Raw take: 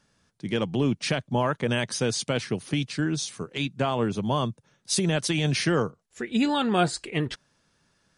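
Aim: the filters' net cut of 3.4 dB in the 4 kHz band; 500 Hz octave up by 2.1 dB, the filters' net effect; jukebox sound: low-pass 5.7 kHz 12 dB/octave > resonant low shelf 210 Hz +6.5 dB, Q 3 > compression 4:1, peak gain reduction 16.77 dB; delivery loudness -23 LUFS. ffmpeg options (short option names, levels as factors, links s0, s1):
-af "lowpass=5700,lowshelf=f=210:t=q:w=3:g=6.5,equalizer=f=500:t=o:g=4.5,equalizer=f=4000:t=o:g=-3.5,acompressor=threshold=0.0282:ratio=4,volume=3.35"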